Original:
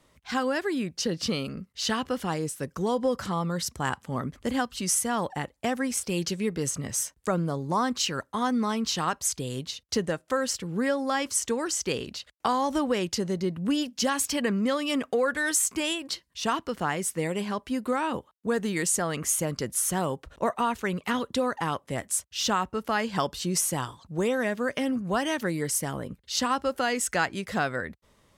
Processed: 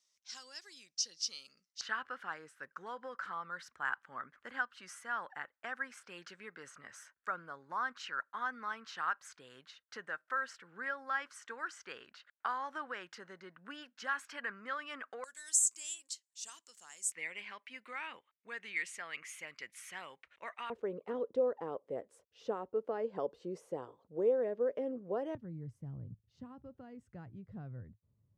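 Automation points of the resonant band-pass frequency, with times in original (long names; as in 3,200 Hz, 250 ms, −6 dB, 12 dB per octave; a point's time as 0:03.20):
resonant band-pass, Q 4.2
5,700 Hz
from 0:01.81 1,500 Hz
from 0:15.24 7,400 Hz
from 0:17.12 2,200 Hz
from 0:20.70 470 Hz
from 0:25.35 110 Hz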